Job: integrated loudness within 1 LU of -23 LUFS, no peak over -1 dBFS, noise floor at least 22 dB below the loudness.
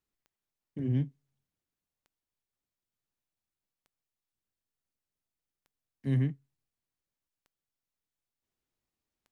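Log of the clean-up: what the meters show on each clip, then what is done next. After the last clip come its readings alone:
clicks 6; loudness -32.5 LUFS; peak -19.5 dBFS; loudness target -23.0 LUFS
-> de-click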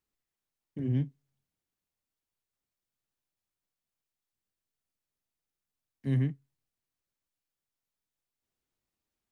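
clicks 0; loudness -32.5 LUFS; peak -19.5 dBFS; loudness target -23.0 LUFS
-> gain +9.5 dB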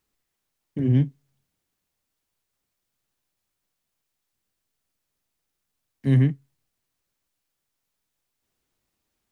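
loudness -23.0 LUFS; peak -10.0 dBFS; noise floor -81 dBFS

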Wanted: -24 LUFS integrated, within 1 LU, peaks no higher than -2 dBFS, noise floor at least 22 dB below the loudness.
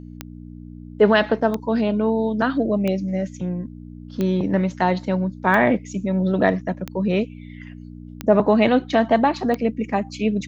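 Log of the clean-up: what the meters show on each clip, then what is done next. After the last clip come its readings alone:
clicks 8; hum 60 Hz; harmonics up to 300 Hz; hum level -36 dBFS; loudness -21.0 LUFS; peak -2.5 dBFS; loudness target -24.0 LUFS
-> de-click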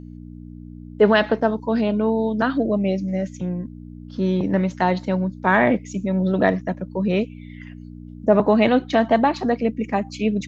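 clicks 0; hum 60 Hz; harmonics up to 300 Hz; hum level -36 dBFS
-> de-hum 60 Hz, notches 5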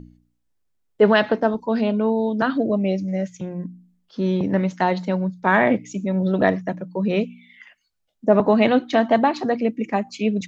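hum none; loudness -21.0 LUFS; peak -2.5 dBFS; loudness target -24.0 LUFS
-> gain -3 dB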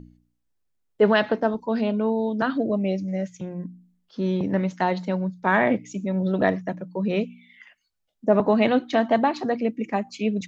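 loudness -24.0 LUFS; peak -5.5 dBFS; noise floor -74 dBFS

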